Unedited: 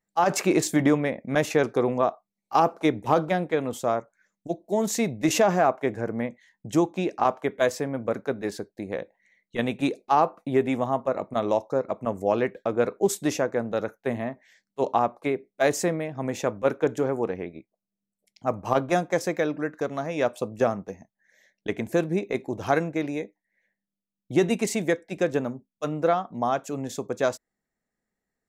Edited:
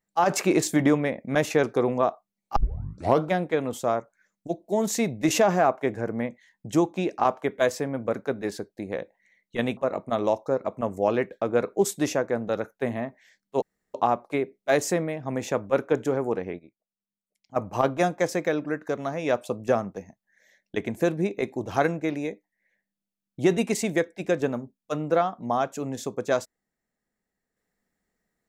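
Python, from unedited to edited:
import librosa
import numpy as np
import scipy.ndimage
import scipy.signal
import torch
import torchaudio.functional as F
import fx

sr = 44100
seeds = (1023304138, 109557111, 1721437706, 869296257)

y = fx.edit(x, sr, fx.tape_start(start_s=2.56, length_s=0.67),
    fx.cut(start_s=9.77, length_s=1.24),
    fx.insert_room_tone(at_s=14.86, length_s=0.32),
    fx.clip_gain(start_s=17.51, length_s=0.97, db=-10.0), tone=tone)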